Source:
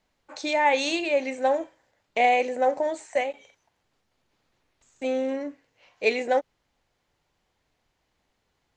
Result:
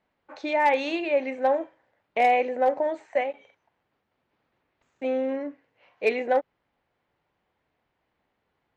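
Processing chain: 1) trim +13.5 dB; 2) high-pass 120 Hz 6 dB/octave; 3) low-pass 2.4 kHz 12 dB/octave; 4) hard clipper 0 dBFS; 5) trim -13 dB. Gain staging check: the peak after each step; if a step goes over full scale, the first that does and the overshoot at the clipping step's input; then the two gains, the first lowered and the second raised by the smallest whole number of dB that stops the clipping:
+4.0 dBFS, +3.5 dBFS, +3.5 dBFS, 0.0 dBFS, -13.0 dBFS; step 1, 3.5 dB; step 1 +9.5 dB, step 5 -9 dB

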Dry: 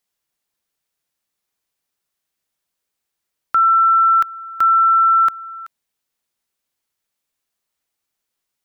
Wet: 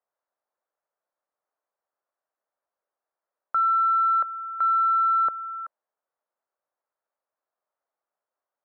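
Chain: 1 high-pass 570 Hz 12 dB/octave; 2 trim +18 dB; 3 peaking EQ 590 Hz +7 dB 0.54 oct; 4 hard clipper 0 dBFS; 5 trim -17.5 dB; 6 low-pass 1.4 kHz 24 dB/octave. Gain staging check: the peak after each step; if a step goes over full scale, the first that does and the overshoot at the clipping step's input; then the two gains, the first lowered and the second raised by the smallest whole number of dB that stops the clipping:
-9.5 dBFS, +8.5 dBFS, +9.5 dBFS, 0.0 dBFS, -17.5 dBFS, -17.5 dBFS; step 2, 9.5 dB; step 2 +8 dB, step 5 -7.5 dB

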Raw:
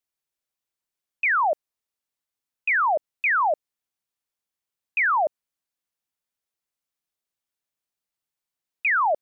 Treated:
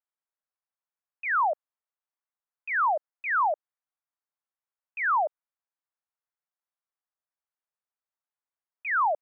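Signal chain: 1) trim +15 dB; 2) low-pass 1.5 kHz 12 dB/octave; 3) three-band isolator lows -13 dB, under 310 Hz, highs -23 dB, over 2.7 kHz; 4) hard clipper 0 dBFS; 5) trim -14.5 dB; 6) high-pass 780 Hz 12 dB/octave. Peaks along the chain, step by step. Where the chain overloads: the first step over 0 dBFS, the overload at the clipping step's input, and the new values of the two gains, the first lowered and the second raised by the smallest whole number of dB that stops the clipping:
-2.5 dBFS, -2.5 dBFS, -3.0 dBFS, -3.0 dBFS, -17.5 dBFS, -19.5 dBFS; nothing clips

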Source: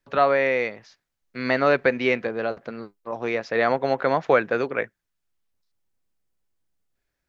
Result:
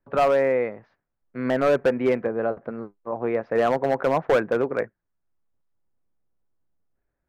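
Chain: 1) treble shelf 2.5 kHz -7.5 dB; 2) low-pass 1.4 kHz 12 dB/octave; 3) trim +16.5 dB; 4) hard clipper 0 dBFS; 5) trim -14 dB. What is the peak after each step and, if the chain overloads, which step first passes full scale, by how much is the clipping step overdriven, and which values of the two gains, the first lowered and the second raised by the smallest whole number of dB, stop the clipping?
-6.0 dBFS, -6.5 dBFS, +10.0 dBFS, 0.0 dBFS, -14.0 dBFS; step 3, 10.0 dB; step 3 +6.5 dB, step 5 -4 dB

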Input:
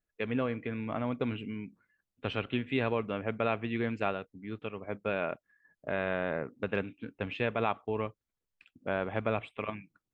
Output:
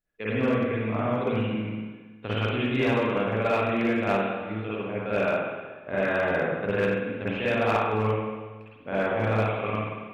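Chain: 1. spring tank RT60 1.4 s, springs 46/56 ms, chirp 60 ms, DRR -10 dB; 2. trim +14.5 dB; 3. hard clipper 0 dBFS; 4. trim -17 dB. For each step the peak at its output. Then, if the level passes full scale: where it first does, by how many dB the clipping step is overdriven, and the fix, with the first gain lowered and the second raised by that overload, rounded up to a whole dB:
-6.5 dBFS, +8.0 dBFS, 0.0 dBFS, -17.0 dBFS; step 2, 8.0 dB; step 2 +6.5 dB, step 4 -9 dB

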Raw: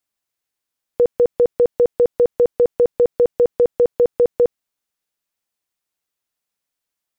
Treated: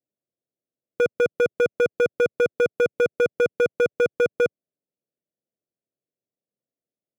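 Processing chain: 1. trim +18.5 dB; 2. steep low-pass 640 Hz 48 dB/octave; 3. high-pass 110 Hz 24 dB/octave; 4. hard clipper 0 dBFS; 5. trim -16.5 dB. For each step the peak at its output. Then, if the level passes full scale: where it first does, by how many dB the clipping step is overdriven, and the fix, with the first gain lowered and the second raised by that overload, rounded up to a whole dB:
+9.5 dBFS, +9.5 dBFS, +10.0 dBFS, 0.0 dBFS, -16.5 dBFS; step 1, 10.0 dB; step 1 +8.5 dB, step 5 -6.5 dB

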